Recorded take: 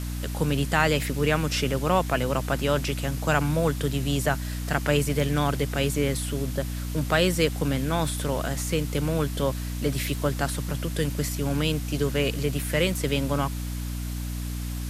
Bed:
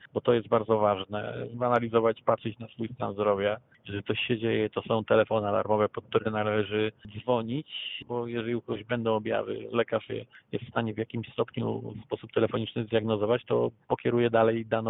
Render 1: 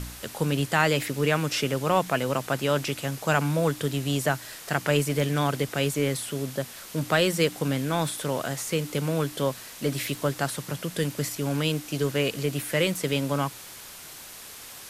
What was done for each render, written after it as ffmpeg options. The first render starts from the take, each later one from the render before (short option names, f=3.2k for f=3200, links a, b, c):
-af "bandreject=f=60:t=h:w=4,bandreject=f=120:t=h:w=4,bandreject=f=180:t=h:w=4,bandreject=f=240:t=h:w=4,bandreject=f=300:t=h:w=4"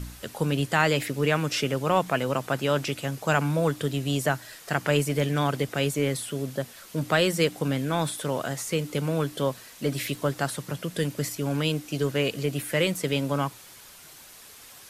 -af "afftdn=nr=6:nf=-43"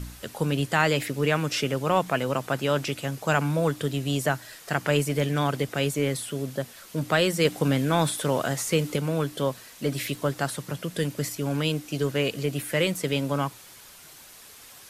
-filter_complex "[0:a]asplit=3[a][b][c];[a]atrim=end=7.452[d];[b]atrim=start=7.448:end=8.962,asetpts=PTS-STARTPTS,volume=3.5dB[e];[c]atrim=start=8.958[f];[d][e]acrossfade=d=0.004:c1=hsin:c2=hsin[g];[g][f]acrossfade=d=0.004:c1=hsin:c2=hsin"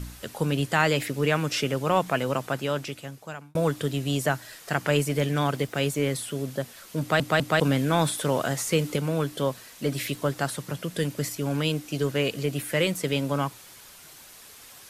-filter_complex "[0:a]asettb=1/sr,asplit=3[a][b][c];[a]atrim=end=5.514[d];[b]atrim=start=5.51:end=6.12,asetpts=PTS-STARTPTS,afade=t=in:d=0.004:c=qsin,afade=t=out:st=0.606:d=0.004:c=qsin,aeval=exprs='sgn(val(0))*max(abs(val(0))-0.00158,0)':c=same[e];[c]atrim=start=6.116[f];[d][e]acrossfade=d=0.004:c1=hsin:c2=qsin[g];[g][f]acrossfade=d=0.004:c1=qsin:c2=hsin,asplit=5[h][i][j][k][l];[h]atrim=end=3.55,asetpts=PTS-STARTPTS,afade=t=out:st=2.33:d=1.22[m];[i]atrim=start=3.55:end=7.202,asetpts=PTS-STARTPTS,afade=t=in:d=0.004:c=hsin[n];[j]atrim=start=6.998:end=7.202[o];[k]atrim=start=6.998:end=7.202[p];[l]atrim=start=7.598[q];[m][n]concat=n=2:v=0:a=1[r];[r][o]acrossfade=d=0.004:c1=hsin:c2=hsin[s];[s][p]acrossfade=d=0.004:c1=hsin:c2=hsin[t];[t][q]acrossfade=d=0.004:c1=hsin:c2=hsin"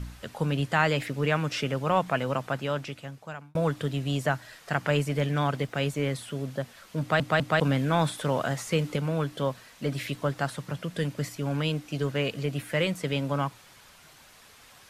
-af "lowpass=f=2.9k:p=1,equalizer=f=360:w=1.5:g=-5"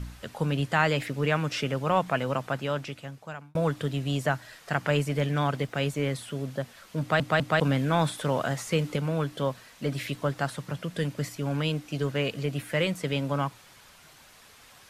-af anull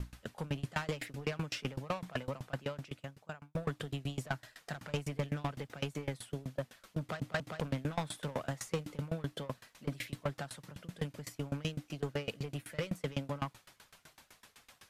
-af "asoftclip=type=tanh:threshold=-24.5dB,aeval=exprs='val(0)*pow(10,-25*if(lt(mod(7.9*n/s,1),2*abs(7.9)/1000),1-mod(7.9*n/s,1)/(2*abs(7.9)/1000),(mod(7.9*n/s,1)-2*abs(7.9)/1000)/(1-2*abs(7.9)/1000))/20)':c=same"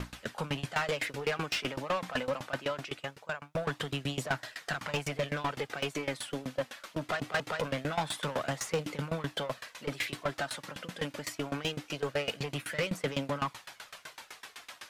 -filter_complex "[0:a]aphaser=in_gain=1:out_gain=1:delay=4:decay=0.29:speed=0.23:type=triangular,asplit=2[a][b];[b]highpass=f=720:p=1,volume=20dB,asoftclip=type=tanh:threshold=-21.5dB[c];[a][c]amix=inputs=2:normalize=0,lowpass=f=4.5k:p=1,volume=-6dB"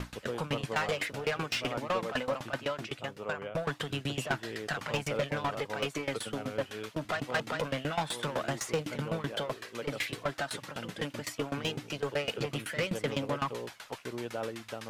-filter_complex "[1:a]volume=-14dB[a];[0:a][a]amix=inputs=2:normalize=0"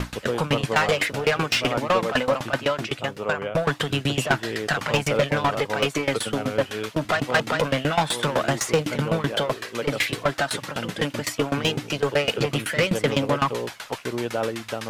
-af "volume=10.5dB"